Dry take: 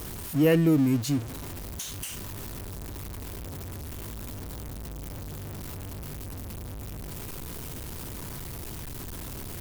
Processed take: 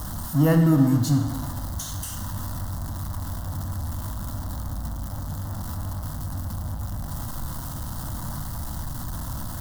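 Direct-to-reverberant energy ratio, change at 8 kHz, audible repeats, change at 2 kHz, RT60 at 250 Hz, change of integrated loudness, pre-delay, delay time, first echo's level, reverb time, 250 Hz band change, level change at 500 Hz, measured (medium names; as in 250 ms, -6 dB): 5.0 dB, +2.5 dB, no echo, 0.0 dB, 1.5 s, +4.0 dB, 21 ms, no echo, no echo, 1.6 s, +3.0 dB, -2.0 dB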